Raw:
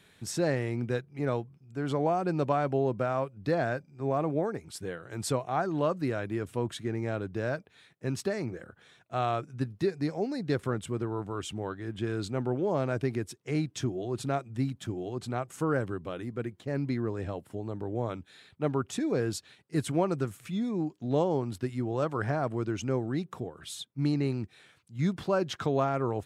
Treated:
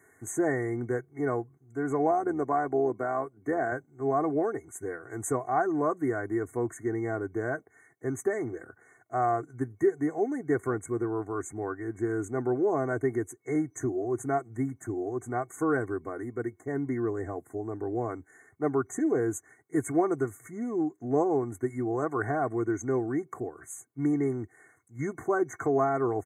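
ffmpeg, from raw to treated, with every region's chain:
ffmpeg -i in.wav -filter_complex "[0:a]asettb=1/sr,asplit=3[link_01][link_02][link_03];[link_01]atrim=end=2.114[link_04];[link_02]atrim=start=2.11:end=3.72,asetpts=PTS-STARTPTS,afade=type=in:duration=0.004:curve=qsin,afade=type=out:start_time=1.606:duration=0.004:curve=qsin,highpass=150,tremolo=f=76:d=0.4[link_05];[link_03]atrim=start=3.716[link_06];[link_04][link_05]acrossfade=duration=0.004:curve1=hsin:curve2=qsin[link_07];[link_07][link_06]acrossfade=duration=0.004:curve1=qsin:curve2=hsin,highpass=120,aecho=1:1:2.7:0.79,afftfilt=real='re*(1-between(b*sr/4096,2200,6000))':imag='im*(1-between(b*sr/4096,2200,6000))':win_size=4096:overlap=0.75" out.wav

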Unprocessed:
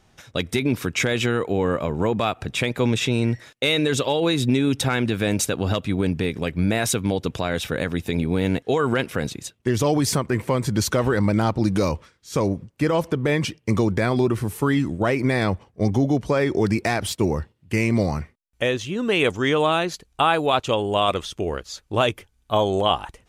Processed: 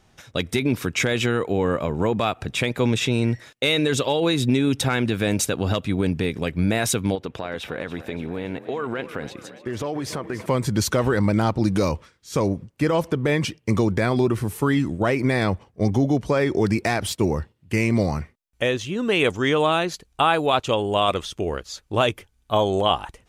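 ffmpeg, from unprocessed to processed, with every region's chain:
ffmpeg -i in.wav -filter_complex "[0:a]asettb=1/sr,asplit=3[link_01][link_02][link_03];[link_01]atrim=end=7.154[link_04];[link_02]atrim=start=7.15:end=10.46,asetpts=PTS-STARTPTS,afade=type=in:duration=0.004:curve=qsin,afade=type=out:start_time=3.306:duration=0.004:curve=qsin,bass=frequency=250:gain=-7,treble=frequency=4000:gain=-12,acompressor=threshold=-25dB:ratio=3:attack=3.2:release=140:knee=1:detection=peak,asplit=7[link_05][link_06][link_07][link_08][link_09][link_10][link_11];[link_06]adelay=285,afreqshift=33,volume=-14dB[link_12];[link_07]adelay=570,afreqshift=66,volume=-18.7dB[link_13];[link_08]adelay=855,afreqshift=99,volume=-23.5dB[link_14];[link_09]adelay=1140,afreqshift=132,volume=-28.2dB[link_15];[link_10]adelay=1425,afreqshift=165,volume=-32.9dB[link_16];[link_11]adelay=1710,afreqshift=198,volume=-37.7dB[link_17];[link_05][link_12][link_13][link_14][link_15][link_16][link_17]amix=inputs=7:normalize=0,atrim=end_sample=145971[link_18];[link_03]atrim=start=10.456[link_19];[link_04][link_18]acrossfade=duration=0.004:curve1=hsin:curve2=qsin[link_20];[link_20][link_19]acrossfade=duration=0.004:curve1=qsin:curve2=hsin" out.wav

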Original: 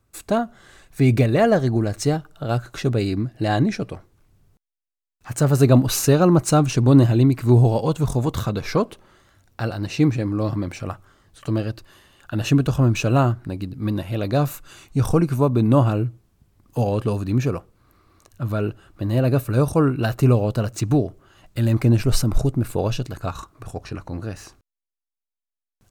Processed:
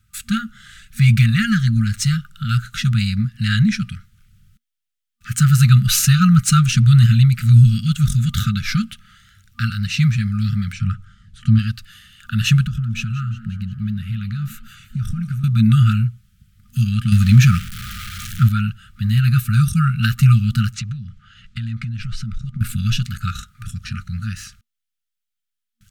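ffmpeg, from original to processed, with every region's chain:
ffmpeg -i in.wav -filter_complex "[0:a]asettb=1/sr,asplit=3[link_01][link_02][link_03];[link_01]atrim=end=10.734[link_04];[link_02]atrim=start=10.73:end=11.59,asetpts=PTS-STARTPTS,afade=type=in:duration=0.004:curve=qsin,afade=type=out:start_time=0.856:duration=0.004:curve=qsin,lowpass=8800,tiltshelf=frequency=710:gain=6[link_05];[link_03]atrim=start=11.586[link_06];[link_04][link_05]acrossfade=duration=0.004:curve1=hsin:curve2=qsin[link_07];[link_07][link_06]acrossfade=duration=0.004:curve1=qsin:curve2=hsin,asettb=1/sr,asplit=3[link_08][link_09][link_10];[link_08]atrim=end=12.654[link_11];[link_09]atrim=start=12.65:end=15.44,asetpts=PTS-STARTPTS,afade=type=in:duration=0.004:curve=qsin,afade=type=out:start_time=2.786:duration=0.004:curve=qsin,highshelf=frequency=2000:gain=-11.5,acompressor=threshold=-25dB:ratio=4:attack=3.2:release=140:knee=1:detection=peak,asplit=6[link_12][link_13][link_14][link_15][link_16][link_17];[link_13]adelay=178,afreqshift=94,volume=-16dB[link_18];[link_14]adelay=356,afreqshift=188,volume=-20.9dB[link_19];[link_15]adelay=534,afreqshift=282,volume=-25.8dB[link_20];[link_16]adelay=712,afreqshift=376,volume=-30.6dB[link_21];[link_17]adelay=890,afreqshift=470,volume=-35.5dB[link_22];[link_12][link_18][link_19][link_20][link_21][link_22]amix=inputs=6:normalize=0,atrim=end_sample=123039[link_23];[link_10]atrim=start=15.436[link_24];[link_11][link_23]acrossfade=duration=0.004:curve1=hsin:curve2=qsin[link_25];[link_25][link_24]acrossfade=duration=0.004:curve1=qsin:curve2=hsin,asettb=1/sr,asplit=3[link_26][link_27][link_28];[link_26]atrim=end=17.124[link_29];[link_27]atrim=start=17.12:end=18.49,asetpts=PTS-STARTPTS,afade=type=in:duration=0.004:curve=qsin,afade=type=out:start_time=1.366:duration=0.004:curve=qsin,aeval=exprs='val(0)+0.5*0.0126*sgn(val(0))':channel_layout=same,acontrast=76[link_30];[link_28]atrim=start=18.486[link_31];[link_29][link_30]acrossfade=duration=0.004:curve1=hsin:curve2=qsin[link_32];[link_32][link_31]acrossfade=duration=0.004:curve1=qsin:curve2=hsin,asettb=1/sr,asplit=3[link_33][link_34][link_35];[link_33]atrim=end=20.744[link_36];[link_34]atrim=start=20.74:end=22.61,asetpts=PTS-STARTPTS,afade=type=in:duration=0.004:curve=qsin,afade=type=out:start_time=1.866:duration=0.004:curve=qsin,lowpass=5000,acompressor=threshold=-29dB:ratio=5:attack=3.2:release=140:knee=1:detection=peak[link_37];[link_35]atrim=start=22.606[link_38];[link_36][link_37]acrossfade=duration=0.004:curve1=hsin:curve2=qsin[link_39];[link_39][link_38]acrossfade=duration=0.004:curve1=qsin:curve2=hsin,afftfilt=real='re*(1-between(b*sr/4096,230,1200))':imag='im*(1-between(b*sr/4096,230,1200))':win_size=4096:overlap=0.75,equalizer=frequency=3200:width_type=o:width=0.44:gain=5,volume=6dB" out.wav

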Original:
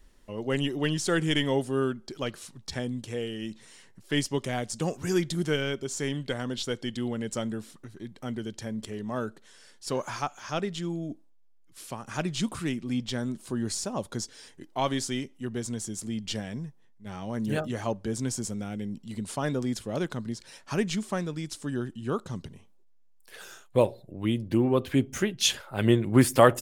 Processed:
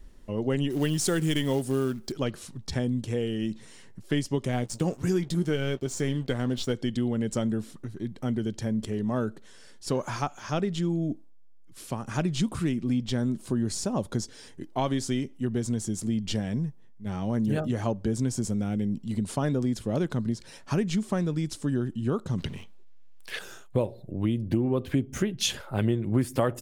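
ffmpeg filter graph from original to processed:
ffmpeg -i in.wav -filter_complex "[0:a]asettb=1/sr,asplit=3[link_01][link_02][link_03];[link_01]atrim=end=0.704[link_04];[link_02]atrim=start=0.7:end=2.12,asetpts=PTS-STARTPTS,afade=type=in:duration=0.004:curve=qsin,afade=type=out:start_time=1.416:duration=0.004:curve=qsin,aemphasis=mode=production:type=50kf,acrusher=bits=4:mode=log:mix=0:aa=0.000001[link_05];[link_03]atrim=start=2.116[link_06];[link_04][link_05]acrossfade=duration=0.004:curve1=hsin:curve2=qsin[link_07];[link_07][link_06]acrossfade=duration=0.004:curve1=qsin:curve2=hsin,asettb=1/sr,asplit=3[link_08][link_09][link_10];[link_08]atrim=end=4.524[link_11];[link_09]atrim=start=4.52:end=6.73,asetpts=PTS-STARTPTS,afade=type=in:duration=0.004:curve=qsin,afade=type=out:start_time=2.206:duration=0.004:curve=qsin,aeval=exprs='sgn(val(0))*max(abs(val(0))-0.00376,0)':channel_layout=same,asplit=2[link_12][link_13];[link_13]adelay=16,volume=-12dB[link_14];[link_12][link_14]amix=inputs=2:normalize=0,atrim=end_sample=97461[link_15];[link_10]atrim=start=6.726[link_16];[link_11][link_15]acrossfade=duration=0.004:curve1=hsin:curve2=qsin[link_17];[link_17][link_16]acrossfade=duration=0.004:curve1=qsin:curve2=hsin,asettb=1/sr,asplit=3[link_18][link_19][link_20];[link_18]atrim=end=22.384[link_21];[link_19]atrim=start=22.38:end=23.39,asetpts=PTS-STARTPTS,afade=type=in:duration=0.004:curve=qsin,afade=type=out:start_time=1.006:duration=0.004:curve=qsin,aeval=exprs='val(0)+0.5*0.00178*sgn(val(0))':channel_layout=same,equalizer=frequency=2700:width=0.47:gain=13.5[link_22];[link_20]atrim=start=23.386[link_23];[link_21][link_22]acrossfade=duration=0.004:curve1=hsin:curve2=qsin[link_24];[link_24][link_23]acrossfade=duration=0.004:curve1=qsin:curve2=hsin,lowshelf=frequency=490:gain=9,acompressor=threshold=-23dB:ratio=4" out.wav

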